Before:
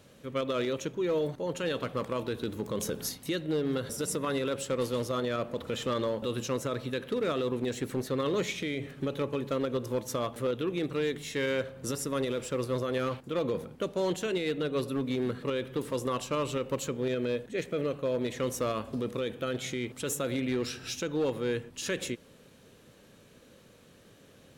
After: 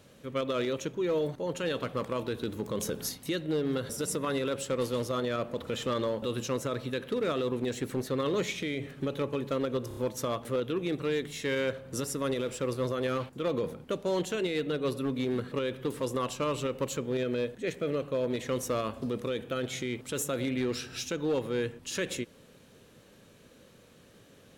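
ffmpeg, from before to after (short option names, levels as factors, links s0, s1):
-filter_complex "[0:a]asplit=4[s0][s1][s2][s3];[s0]atrim=end=9.912[s4];[s1]atrim=start=9.878:end=9.912[s5];[s2]atrim=start=9.878:end=9.912[s6];[s3]atrim=start=9.878[s7];[s4][s5]acrossfade=d=0.004:c1=hsin:c2=hsin[s8];[s8][s6]acrossfade=d=0.004:c1=hsin:c2=hsin[s9];[s9][s7]acrossfade=d=0.004:c1=hsin:c2=hsin"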